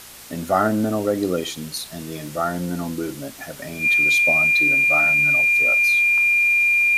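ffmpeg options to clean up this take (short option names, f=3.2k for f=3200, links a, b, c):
-af "bandreject=f=58.5:t=h:w=4,bandreject=f=117:t=h:w=4,bandreject=f=175.5:t=h:w=4,bandreject=f=234:t=h:w=4,bandreject=f=2.4k:w=30,afftdn=nr=30:nf=-36"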